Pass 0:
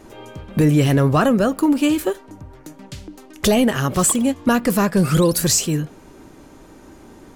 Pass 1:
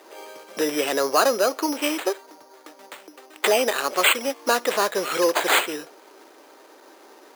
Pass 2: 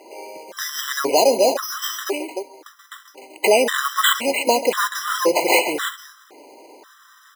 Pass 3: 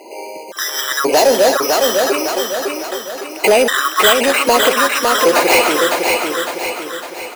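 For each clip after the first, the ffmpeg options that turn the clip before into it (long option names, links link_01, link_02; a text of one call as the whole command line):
ffmpeg -i in.wav -af "acrusher=samples=8:mix=1:aa=0.000001,highpass=frequency=410:width=0.5412,highpass=frequency=410:width=1.3066" out.wav
ffmpeg -i in.wav -filter_complex "[0:a]asplit=2[link_01][link_02];[link_02]aecho=0:1:136|300:0.178|0.355[link_03];[link_01][link_03]amix=inputs=2:normalize=0,afftfilt=real='re*gt(sin(2*PI*0.95*pts/sr)*(1-2*mod(floor(b*sr/1024/1000),2)),0)':imag='im*gt(sin(2*PI*0.95*pts/sr)*(1-2*mod(floor(b*sr/1024/1000),2)),0)':win_size=1024:overlap=0.75,volume=5dB" out.wav
ffmpeg -i in.wav -filter_complex "[0:a]asoftclip=type=tanh:threshold=-12dB,asplit=2[link_01][link_02];[link_02]aecho=0:1:556|1112|1668|2224|2780|3336:0.631|0.309|0.151|0.0742|0.0364|0.0178[link_03];[link_01][link_03]amix=inputs=2:normalize=0,volume=7dB" out.wav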